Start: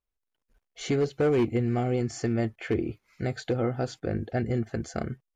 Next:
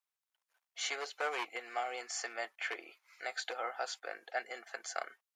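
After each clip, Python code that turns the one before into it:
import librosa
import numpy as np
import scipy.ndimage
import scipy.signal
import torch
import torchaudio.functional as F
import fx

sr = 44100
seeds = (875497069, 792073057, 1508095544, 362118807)

y = scipy.signal.sosfilt(scipy.signal.butter(4, 770.0, 'highpass', fs=sr, output='sos'), x)
y = F.gain(torch.from_numpy(y), 1.0).numpy()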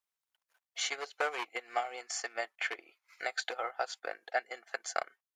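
y = fx.transient(x, sr, attack_db=6, sustain_db=-8)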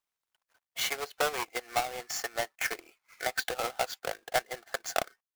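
y = fx.halfwave_hold(x, sr)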